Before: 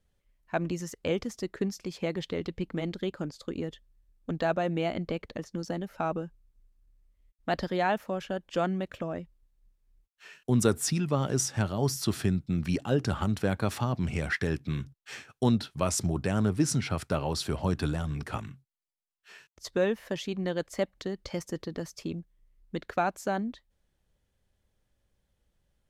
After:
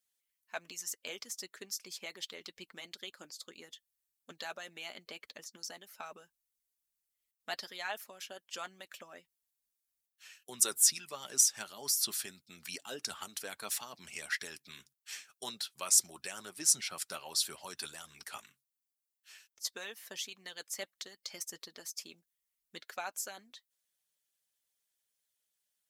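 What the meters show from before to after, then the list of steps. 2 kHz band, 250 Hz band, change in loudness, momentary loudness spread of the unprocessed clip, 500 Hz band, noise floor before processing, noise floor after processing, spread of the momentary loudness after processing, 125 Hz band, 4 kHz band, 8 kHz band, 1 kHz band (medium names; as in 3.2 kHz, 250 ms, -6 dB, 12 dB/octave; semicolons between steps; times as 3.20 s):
-6.0 dB, -25.5 dB, -4.0 dB, 11 LU, -18.0 dB, -77 dBFS, under -85 dBFS, 22 LU, -33.0 dB, +1.5 dB, +6.0 dB, -12.5 dB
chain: differentiator; flange 0.15 Hz, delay 4.4 ms, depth 1.1 ms, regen -48%; harmonic-percussive split percussive +9 dB; trim +2 dB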